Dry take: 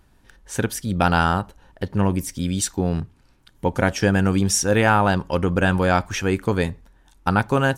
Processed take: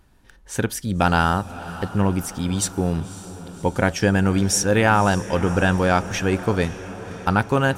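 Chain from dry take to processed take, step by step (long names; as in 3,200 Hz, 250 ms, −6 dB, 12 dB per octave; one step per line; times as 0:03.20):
feedback delay with all-pass diffusion 558 ms, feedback 58%, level −15 dB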